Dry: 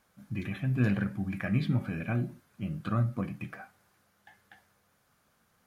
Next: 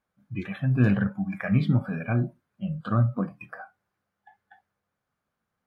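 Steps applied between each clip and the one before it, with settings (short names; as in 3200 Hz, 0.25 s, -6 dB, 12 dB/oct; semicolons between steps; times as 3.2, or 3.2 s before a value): spectral noise reduction 17 dB; high shelf 4200 Hz -11.5 dB; gain +6 dB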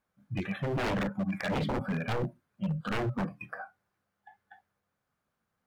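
wavefolder -25 dBFS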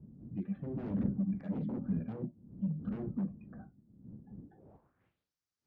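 wind noise 120 Hz -37 dBFS; band-pass sweep 220 Hz -> 5400 Hz, 4.4–5.31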